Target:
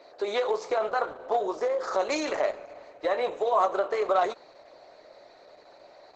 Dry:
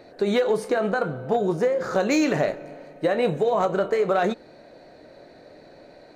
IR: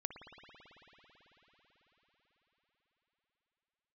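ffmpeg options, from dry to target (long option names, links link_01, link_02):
-af "highpass=frequency=430:width=0.5412,highpass=frequency=430:width=1.3066,equalizer=frequency=490:width_type=q:width=4:gain=-5,equalizer=frequency=1100:width_type=q:width=4:gain=6,equalizer=frequency=1600:width_type=q:width=4:gain=-7,equalizer=frequency=2800:width_type=q:width=4:gain=-4,lowpass=frequency=7300:width=0.5412,lowpass=frequency=7300:width=1.3066" -ar 48000 -c:a libopus -b:a 10k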